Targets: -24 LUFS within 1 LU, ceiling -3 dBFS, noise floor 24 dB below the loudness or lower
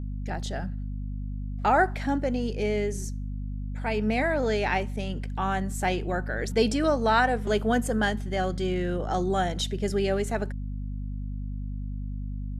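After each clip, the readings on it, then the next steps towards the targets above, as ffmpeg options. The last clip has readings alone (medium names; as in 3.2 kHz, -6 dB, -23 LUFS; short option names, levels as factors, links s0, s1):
hum 50 Hz; highest harmonic 250 Hz; hum level -30 dBFS; loudness -28.0 LUFS; peak level -10.5 dBFS; loudness target -24.0 LUFS
-> -af "bandreject=f=50:t=h:w=6,bandreject=f=100:t=h:w=6,bandreject=f=150:t=h:w=6,bandreject=f=200:t=h:w=6,bandreject=f=250:t=h:w=6"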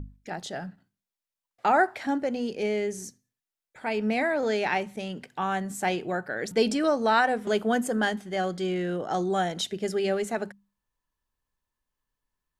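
hum not found; loudness -27.5 LUFS; peak level -11.0 dBFS; loudness target -24.0 LUFS
-> -af "volume=1.5"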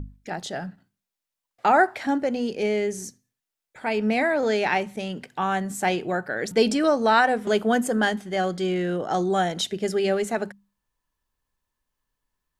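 loudness -24.0 LUFS; peak level -7.0 dBFS; noise floor -87 dBFS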